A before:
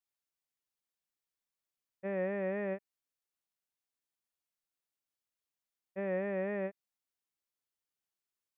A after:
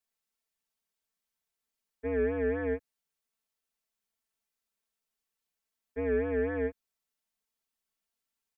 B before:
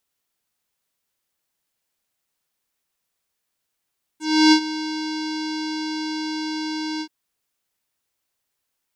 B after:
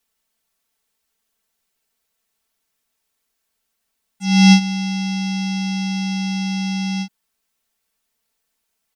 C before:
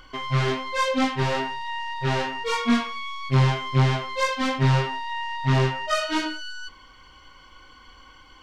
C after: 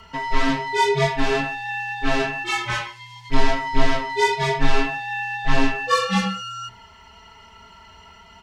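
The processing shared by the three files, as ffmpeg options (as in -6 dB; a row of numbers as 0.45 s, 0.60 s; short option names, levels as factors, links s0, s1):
-af "afreqshift=-120,aecho=1:1:4.5:0.96,volume=1.12"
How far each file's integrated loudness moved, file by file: +5.0 LU, +4.5 LU, +1.5 LU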